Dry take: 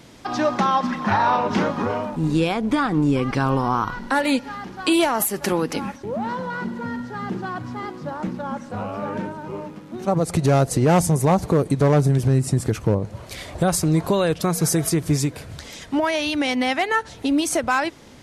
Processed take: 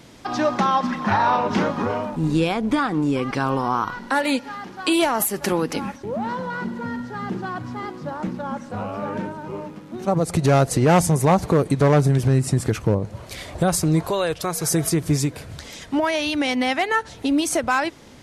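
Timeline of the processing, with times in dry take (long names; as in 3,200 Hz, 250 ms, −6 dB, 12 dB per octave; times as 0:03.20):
0:02.79–0:05.02: low-shelf EQ 130 Hz −10.5 dB
0:10.44–0:12.82: parametric band 2,000 Hz +3.5 dB 2.6 octaves
0:14.03–0:14.71: parametric band 210 Hz −11.5 dB 1.2 octaves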